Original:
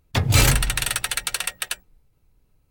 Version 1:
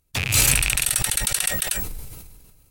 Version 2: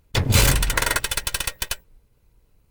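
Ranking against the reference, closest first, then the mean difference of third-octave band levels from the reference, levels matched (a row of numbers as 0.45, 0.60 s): 2, 1; 3.5, 6.5 dB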